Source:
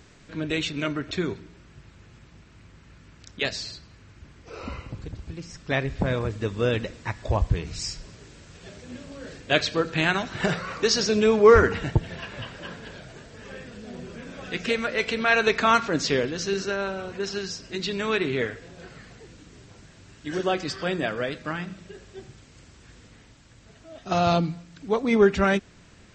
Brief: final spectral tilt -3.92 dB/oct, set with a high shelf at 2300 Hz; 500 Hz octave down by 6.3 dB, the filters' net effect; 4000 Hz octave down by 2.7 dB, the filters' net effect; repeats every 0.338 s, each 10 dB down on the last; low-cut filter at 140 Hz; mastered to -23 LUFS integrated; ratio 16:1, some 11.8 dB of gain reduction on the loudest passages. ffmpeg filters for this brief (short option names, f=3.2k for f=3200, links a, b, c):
-af "highpass=140,equalizer=f=500:t=o:g=-8,highshelf=f=2.3k:g=5,equalizer=f=4k:t=o:g=-8.5,acompressor=threshold=-26dB:ratio=16,aecho=1:1:338|676|1014|1352:0.316|0.101|0.0324|0.0104,volume=10dB"